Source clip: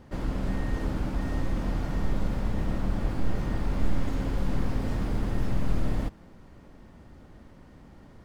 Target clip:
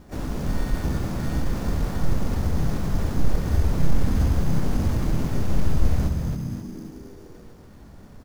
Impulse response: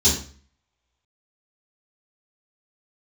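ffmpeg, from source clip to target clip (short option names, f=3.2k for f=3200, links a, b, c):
-filter_complex "[0:a]asplit=7[a][b][c][d][e][f][g];[b]adelay=268,afreqshift=-80,volume=-5dB[h];[c]adelay=536,afreqshift=-160,volume=-11.2dB[i];[d]adelay=804,afreqshift=-240,volume=-17.4dB[j];[e]adelay=1072,afreqshift=-320,volume=-23.6dB[k];[f]adelay=1340,afreqshift=-400,volume=-29.8dB[l];[g]adelay=1608,afreqshift=-480,volume=-36dB[m];[a][h][i][j][k][l][m]amix=inputs=7:normalize=0,acrusher=samples=7:mix=1:aa=0.000001,asplit=3[n][o][p];[o]asetrate=35002,aresample=44100,atempo=1.25992,volume=-1dB[q];[p]asetrate=55563,aresample=44100,atempo=0.793701,volume=-10dB[r];[n][q][r]amix=inputs=3:normalize=0"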